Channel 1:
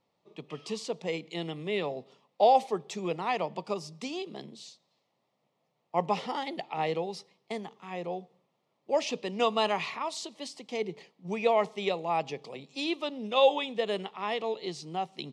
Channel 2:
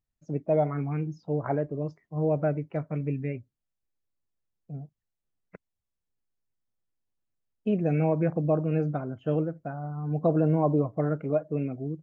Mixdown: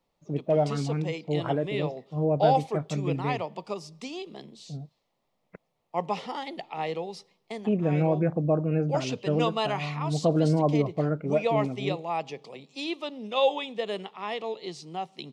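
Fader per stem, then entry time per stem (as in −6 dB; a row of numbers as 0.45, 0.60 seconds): −1.0, +0.5 decibels; 0.00, 0.00 seconds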